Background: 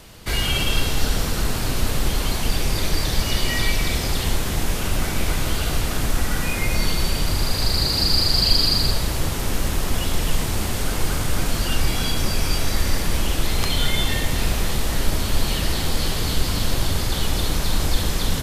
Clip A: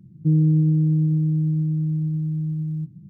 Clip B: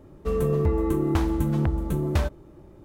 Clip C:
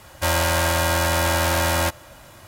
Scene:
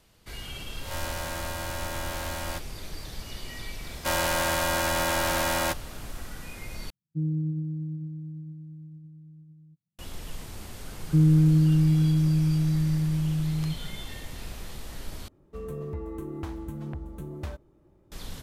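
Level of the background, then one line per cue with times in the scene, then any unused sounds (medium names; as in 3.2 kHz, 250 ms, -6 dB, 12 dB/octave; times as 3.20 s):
background -17.5 dB
0.69 s: add C -15 dB + reverse spectral sustain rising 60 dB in 0.45 s
3.83 s: add C -5 dB + high-pass 130 Hz
6.90 s: replace with A -10 dB + upward expansion 2.5:1, over -39 dBFS
10.88 s: add A -1.5 dB
15.28 s: replace with B -12.5 dB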